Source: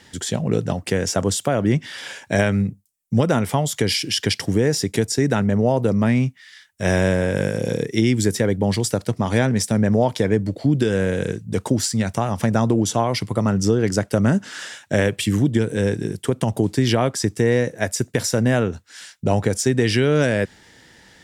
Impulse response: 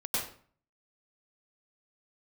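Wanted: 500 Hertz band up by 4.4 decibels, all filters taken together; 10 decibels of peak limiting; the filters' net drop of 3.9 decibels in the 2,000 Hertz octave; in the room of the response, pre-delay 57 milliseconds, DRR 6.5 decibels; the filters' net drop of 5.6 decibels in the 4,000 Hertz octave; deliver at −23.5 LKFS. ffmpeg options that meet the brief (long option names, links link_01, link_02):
-filter_complex "[0:a]equalizer=frequency=500:width_type=o:gain=5.5,equalizer=frequency=2000:width_type=o:gain=-4,equalizer=frequency=4000:width_type=o:gain=-7,alimiter=limit=-12.5dB:level=0:latency=1,asplit=2[link_01][link_02];[1:a]atrim=start_sample=2205,adelay=57[link_03];[link_02][link_03]afir=irnorm=-1:irlink=0,volume=-12.5dB[link_04];[link_01][link_04]amix=inputs=2:normalize=0,volume=-1dB"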